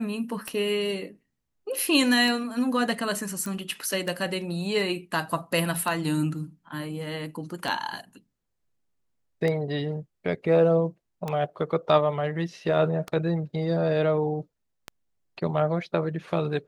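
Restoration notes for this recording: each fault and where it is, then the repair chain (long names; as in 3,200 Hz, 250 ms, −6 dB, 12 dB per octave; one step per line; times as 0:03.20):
scratch tick 33 1/3 rpm −16 dBFS
0:03.46: click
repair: click removal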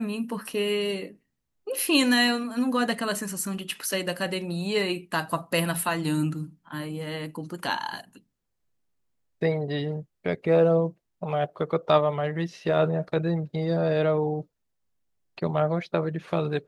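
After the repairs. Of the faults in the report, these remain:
none of them is left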